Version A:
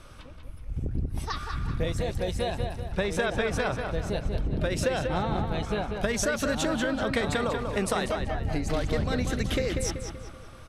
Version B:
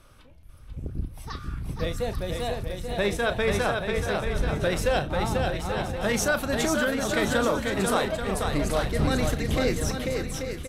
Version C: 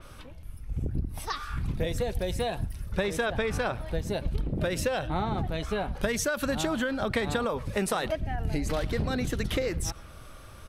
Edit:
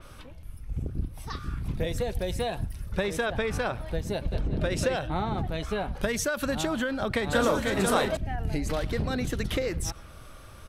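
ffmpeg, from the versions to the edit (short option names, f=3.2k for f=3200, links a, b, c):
-filter_complex "[1:a]asplit=2[a][b];[2:a]asplit=4[c][d][e][f];[c]atrim=end=0.832[g];[a]atrim=start=0.828:end=1.682[h];[d]atrim=start=1.678:end=4.322[i];[0:a]atrim=start=4.318:end=4.962[j];[e]atrim=start=4.958:end=7.332[k];[b]atrim=start=7.328:end=8.172[l];[f]atrim=start=8.168[m];[g][h]acrossfade=d=0.004:c1=hsin:c2=hsin[n];[n][i]acrossfade=d=0.004:c1=hsin:c2=hsin[o];[o][j]acrossfade=d=0.004:c1=hsin:c2=hsin[p];[p][k]acrossfade=d=0.004:c1=hsin:c2=hsin[q];[q][l]acrossfade=d=0.004:c1=hsin:c2=hsin[r];[r][m]acrossfade=d=0.004:c1=hsin:c2=hsin"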